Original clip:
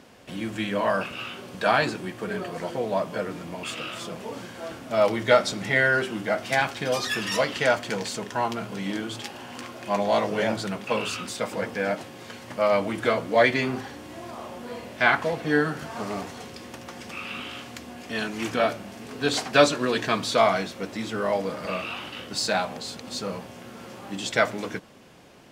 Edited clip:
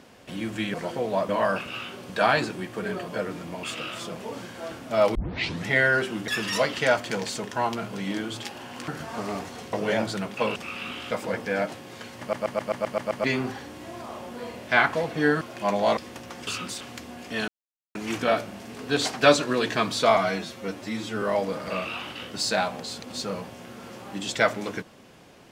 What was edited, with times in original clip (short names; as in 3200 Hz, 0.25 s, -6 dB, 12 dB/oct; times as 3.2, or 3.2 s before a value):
2.53–3.08 move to 0.74
5.15 tape start 0.51 s
6.28–7.07 cut
9.67–10.23 swap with 15.7–16.55
11.06–11.4 swap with 17.05–17.6
12.49 stutter in place 0.13 s, 8 plays
18.27 insert silence 0.47 s
20.49–21.19 stretch 1.5×